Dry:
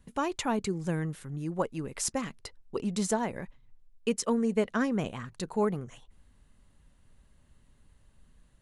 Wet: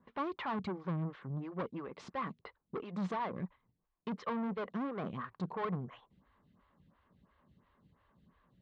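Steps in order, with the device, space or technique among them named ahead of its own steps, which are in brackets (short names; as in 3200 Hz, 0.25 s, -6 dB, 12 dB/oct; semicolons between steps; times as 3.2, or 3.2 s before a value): vibe pedal into a guitar amplifier (photocell phaser 2.9 Hz; tube stage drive 37 dB, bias 0.2; speaker cabinet 84–3600 Hz, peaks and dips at 180 Hz +6 dB, 1100 Hz +9 dB, 2700 Hz -4 dB); gain +1.5 dB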